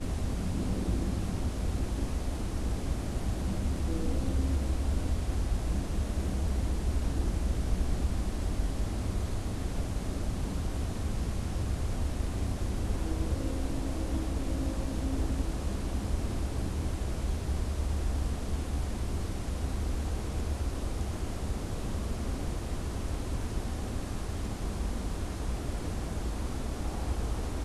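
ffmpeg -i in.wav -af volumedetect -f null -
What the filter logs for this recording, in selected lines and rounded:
mean_volume: -30.7 dB
max_volume: -16.7 dB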